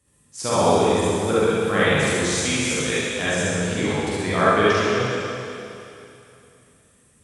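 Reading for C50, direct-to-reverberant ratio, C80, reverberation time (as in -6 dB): -6.5 dB, -10.5 dB, -3.0 dB, 2.8 s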